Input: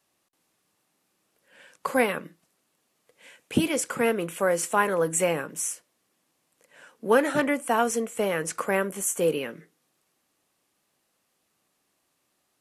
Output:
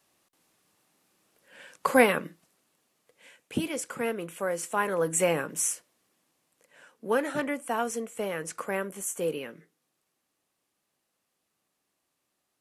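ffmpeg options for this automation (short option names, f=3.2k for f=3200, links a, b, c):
-af "volume=11.5dB,afade=t=out:st=2.23:d=1.33:silence=0.334965,afade=t=in:st=4.67:d=0.99:silence=0.375837,afade=t=out:st=5.66:d=1.44:silence=0.398107"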